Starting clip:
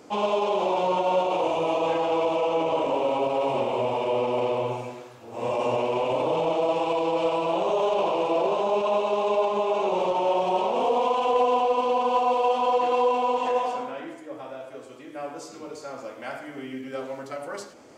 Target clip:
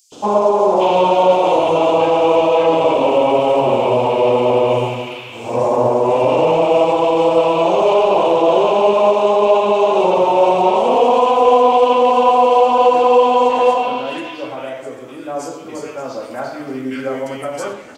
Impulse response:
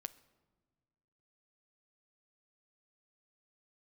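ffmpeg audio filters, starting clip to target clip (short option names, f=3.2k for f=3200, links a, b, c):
-filter_complex "[0:a]acrossover=split=1600|4900[a][b][c];[a]adelay=120[d];[b]adelay=690[e];[d][e][c]amix=inputs=3:normalize=0,asplit=2[f][g];[1:a]atrim=start_sample=2205[h];[g][h]afir=irnorm=-1:irlink=0,volume=7.5dB[i];[f][i]amix=inputs=2:normalize=0,volume=3dB"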